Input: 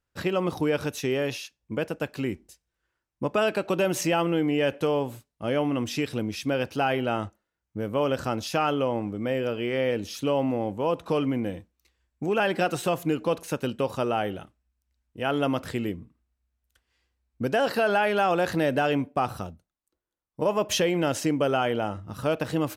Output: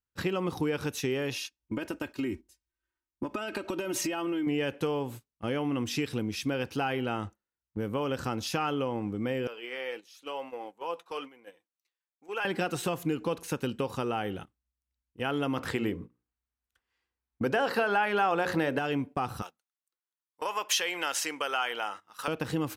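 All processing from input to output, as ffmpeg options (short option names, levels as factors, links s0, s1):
-filter_complex "[0:a]asettb=1/sr,asplit=3[s0][s1][s2];[s0]atrim=end=1.364[s3];[s1]atrim=start=1.36:end=4.47,asetpts=PTS-STARTPTS,afade=t=in:d=0.004:c=qsin,afade=t=out:st=3.106:d=0.004:c=qsin,aecho=1:1:3.2:0.71,atrim=end_sample=137151,acompressor=threshold=0.0501:ratio=10:attack=3.2:release=140:knee=1:detection=peak[s4];[s2]atrim=start=4.466[s5];[s3][s4]acrossfade=d=0.004:c1=hsin:c2=qsin[s6];[s6][s5]acrossfade=d=0.004:c1=qsin:c2=hsin,asettb=1/sr,asplit=3[s7][s8][s9];[s7]atrim=end=9.474[s10];[s8]atrim=start=9.47:end=12.45,asetpts=PTS-STARTPTS,afade=t=in:d=0.004:c=qsin,afade=t=out:st=2.976:d=0.004:c=qsin,highpass=640,flanger=delay=1.8:depth=4.2:regen=63:speed=1:shape=sinusoidal[s11];[s9]atrim=start=12.446[s12];[s10][s11]acrossfade=d=0.004:c1=hsin:c2=qsin[s13];[s13][s12]acrossfade=d=0.004:c1=qsin:c2=hsin,asettb=1/sr,asplit=3[s14][s15][s16];[s14]atrim=end=15.574[s17];[s15]atrim=start=15.57:end=18.79,asetpts=PTS-STARTPTS,afade=t=in:d=0.004:c=qsin,afade=t=out:st=3.216:d=0.004:c=qsin,equalizer=f=980:w=0.38:g=8,bandreject=f=60:t=h:w=6,bandreject=f=120:t=h:w=6,bandreject=f=180:t=h:w=6,bandreject=f=240:t=h:w=6,bandreject=f=300:t=h:w=6,bandreject=f=360:t=h:w=6,bandreject=f=420:t=h:w=6,bandreject=f=480:t=h:w=6,bandreject=f=540:t=h:w=6,bandreject=f=600:t=h:w=6[s18];[s16]atrim=start=18.786[s19];[s17][s18]acrossfade=d=0.004:c1=hsin:c2=qsin[s20];[s20][s19]acrossfade=d=0.004:c1=qsin:c2=hsin,asettb=1/sr,asplit=3[s21][s22][s23];[s21]atrim=end=19.424[s24];[s22]atrim=start=19.42:end=22.28,asetpts=PTS-STARTPTS,afade=t=in:d=0.004:c=qsin,afade=t=out:st=2.856:d=0.004:c=qsin,highpass=980,acontrast=31[s25];[s23]atrim=start=22.276[s26];[s24][s25]acrossfade=d=0.004:c1=hsin:c2=qsin[s27];[s27][s26]acrossfade=d=0.004:c1=qsin:c2=hsin,agate=range=0.251:threshold=0.0112:ratio=16:detection=peak,acompressor=threshold=0.0398:ratio=2,equalizer=f=620:t=o:w=0.25:g=-10"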